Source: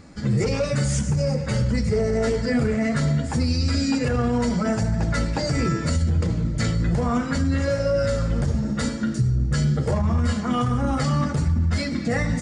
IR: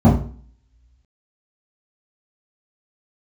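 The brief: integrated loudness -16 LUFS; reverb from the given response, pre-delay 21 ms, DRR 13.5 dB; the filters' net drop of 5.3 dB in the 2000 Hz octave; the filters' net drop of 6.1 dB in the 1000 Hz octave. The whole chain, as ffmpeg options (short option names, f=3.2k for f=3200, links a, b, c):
-filter_complex "[0:a]equalizer=f=1k:t=o:g=-7.5,equalizer=f=2k:t=o:g=-4,asplit=2[a][b];[1:a]atrim=start_sample=2205,adelay=21[c];[b][c]afir=irnorm=-1:irlink=0,volume=-36dB[d];[a][d]amix=inputs=2:normalize=0,volume=1dB"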